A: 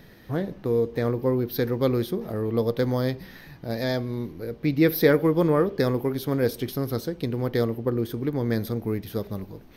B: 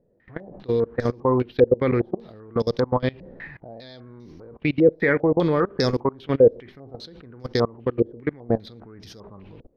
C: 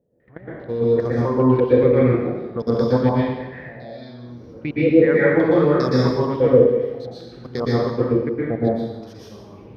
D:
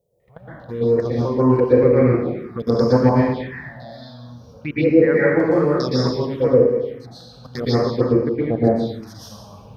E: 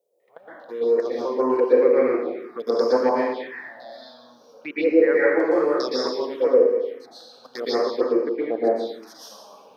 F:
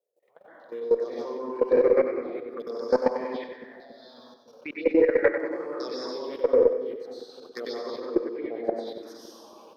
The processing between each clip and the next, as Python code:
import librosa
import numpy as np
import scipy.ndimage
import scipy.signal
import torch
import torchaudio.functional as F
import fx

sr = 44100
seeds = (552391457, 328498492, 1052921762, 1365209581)

y1 = fx.level_steps(x, sr, step_db=24)
y1 = fx.filter_held_lowpass(y1, sr, hz=5.0, low_hz=530.0, high_hz=5500.0)
y1 = y1 * librosa.db_to_amplitude(4.0)
y2 = scipy.signal.sosfilt(scipy.signal.butter(2, 52.0, 'highpass', fs=sr, output='sos'), y1)
y2 = fx.peak_eq(y2, sr, hz=4000.0, db=-5.0, octaves=2.1)
y2 = fx.rev_plate(y2, sr, seeds[0], rt60_s=1.1, hf_ratio=0.9, predelay_ms=105, drr_db=-7.5)
y2 = y2 * librosa.db_to_amplitude(-4.0)
y3 = fx.high_shelf(y2, sr, hz=2100.0, db=8.5)
y3 = fx.rider(y3, sr, range_db=10, speed_s=2.0)
y3 = fx.env_phaser(y3, sr, low_hz=270.0, high_hz=3500.0, full_db=-13.0)
y4 = scipy.signal.sosfilt(scipy.signal.butter(4, 330.0, 'highpass', fs=sr, output='sos'), y3)
y4 = y4 * librosa.db_to_amplitude(-1.5)
y5 = fx.level_steps(y4, sr, step_db=17)
y5 = fx.echo_split(y5, sr, split_hz=380.0, low_ms=280, high_ms=95, feedback_pct=52, wet_db=-8.5)
y5 = fx.cheby_harmonics(y5, sr, harmonics=(2,), levels_db=(-25,), full_scale_db=-7.0)